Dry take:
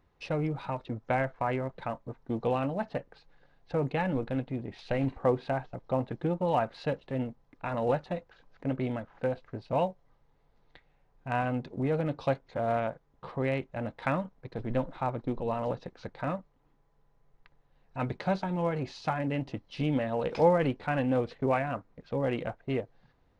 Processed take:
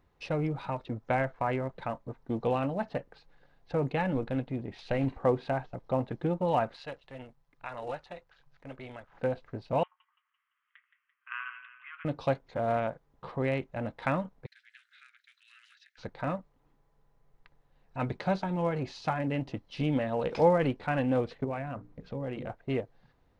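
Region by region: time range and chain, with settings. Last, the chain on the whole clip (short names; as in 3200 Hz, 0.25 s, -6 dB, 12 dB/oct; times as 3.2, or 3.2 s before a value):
6.76–9.12 bell 200 Hz -14.5 dB 2.8 oct + AM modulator 140 Hz, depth 35%
9.83–12.05 Chebyshev band-pass 1100–3200 Hz, order 5 + split-band echo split 1300 Hz, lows 84 ms, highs 0.17 s, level -10.5 dB
14.46–15.98 steep high-pass 1500 Hz 72 dB/oct + compressor 2:1, threshold -57 dBFS
21.44–22.5 low shelf 350 Hz +7 dB + notches 60/120/180/240/300/360/420/480 Hz + compressor 2:1, threshold -39 dBFS
whole clip: dry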